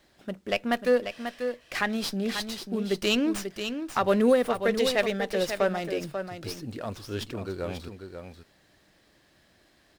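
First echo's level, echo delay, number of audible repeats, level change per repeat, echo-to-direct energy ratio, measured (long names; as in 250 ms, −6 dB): −8.0 dB, 540 ms, 1, repeats not evenly spaced, −8.0 dB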